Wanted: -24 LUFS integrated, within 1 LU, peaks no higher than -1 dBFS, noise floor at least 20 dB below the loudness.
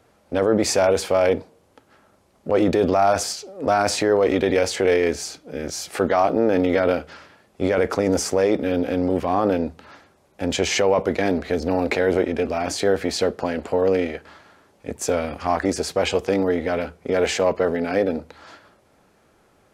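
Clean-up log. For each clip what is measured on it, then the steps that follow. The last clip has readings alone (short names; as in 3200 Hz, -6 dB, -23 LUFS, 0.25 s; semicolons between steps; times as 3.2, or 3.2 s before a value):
loudness -21.5 LUFS; peak -7.5 dBFS; loudness target -24.0 LUFS
-> gain -2.5 dB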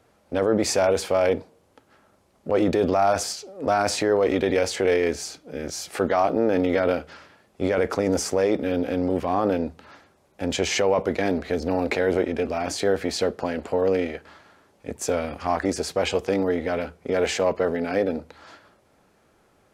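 loudness -24.0 LUFS; peak -10.0 dBFS; noise floor -62 dBFS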